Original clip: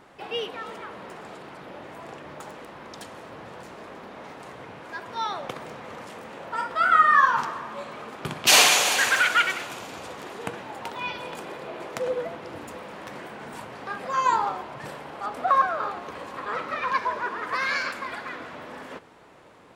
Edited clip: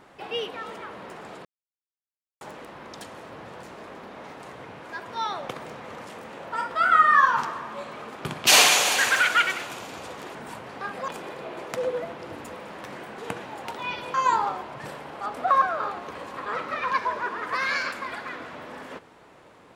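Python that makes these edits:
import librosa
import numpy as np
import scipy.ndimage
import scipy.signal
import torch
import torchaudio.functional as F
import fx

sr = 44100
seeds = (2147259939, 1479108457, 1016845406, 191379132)

y = fx.edit(x, sr, fx.silence(start_s=1.45, length_s=0.96),
    fx.swap(start_s=10.35, length_s=0.96, other_s=13.41, other_length_s=0.73), tone=tone)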